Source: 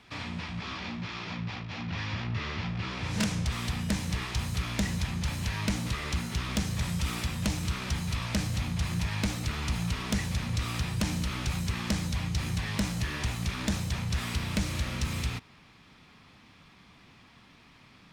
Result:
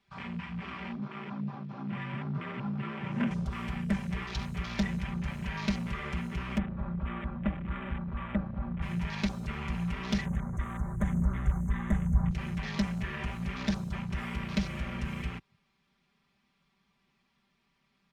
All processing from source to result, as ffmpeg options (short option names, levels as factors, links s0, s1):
-filter_complex "[0:a]asettb=1/sr,asplit=3[s0][s1][s2];[s0]atrim=end=0.974[s3];[s1]atrim=start=0.97:end=3.31,asetpts=PTS-STARTPTS,afade=t=in:d=0.004:c=qsin,afade=t=out:st=2.336:d=0.004:c=qsin,acrossover=split=2500[s4][s5];[s5]acompressor=threshold=0.00355:ratio=4:attack=1:release=60[s6];[s4][s6]amix=inputs=2:normalize=0,afreqshift=29[s7];[s2]atrim=start=3.306[s8];[s3][s7]acrossfade=d=0.004:c1=hsin:c2=qsin[s9];[s9][s8]acrossfade=d=0.004:c1=qsin:c2=hsin,asettb=1/sr,asplit=3[s10][s11][s12];[s10]atrim=end=6.584[s13];[s11]atrim=start=6.58:end=8.82,asetpts=PTS-STARTPTS,afade=t=in:d=0.004:c=qsin,afade=t=out:st=2.236:d=0.004:c=qsin,lowpass=f=2200:w=0.5412,lowpass=f=2200:w=1.3066,aecho=1:1:3.5:0.39,atrim=end_sample=98784[s14];[s12]atrim=start=8.816[s15];[s13][s14]acrossfade=d=0.004:c1=hsin:c2=qsin[s16];[s16][s15]acrossfade=d=0.004:c1=qsin:c2=hsin,asettb=1/sr,asplit=3[s17][s18][s19];[s17]atrim=end=10.254[s20];[s18]atrim=start=10.25:end=12.31,asetpts=PTS-STARTPTS,afade=t=in:d=0.004:c=qsin,afade=t=out:st=2.056:d=0.004:c=qsin,asubboost=boost=5:cutoff=150,aphaser=in_gain=1:out_gain=1:delay=4:decay=0.28:speed=1:type=sinusoidal,asuperstop=centerf=3700:order=20:qfactor=0.93[s21];[s19]atrim=start=12.306[s22];[s20][s21]acrossfade=d=0.004:c1=hsin:c2=qsin[s23];[s23][s22]acrossfade=d=0.004:c1=qsin:c2=hsin,aecho=1:1:5.1:0.85,afwtdn=0.0141,volume=0.668"